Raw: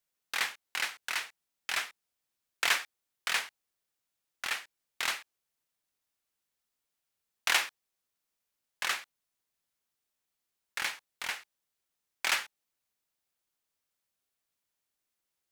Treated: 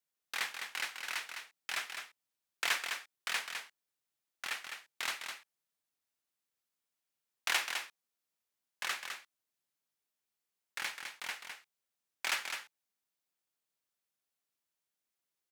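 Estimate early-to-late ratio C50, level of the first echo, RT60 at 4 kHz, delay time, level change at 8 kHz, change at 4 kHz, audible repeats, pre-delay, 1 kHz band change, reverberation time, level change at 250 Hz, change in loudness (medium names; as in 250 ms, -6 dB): no reverb, -6.5 dB, no reverb, 207 ms, -4.0 dB, -4.0 dB, 1, no reverb, -4.0 dB, no reverb, -4.0 dB, -5.0 dB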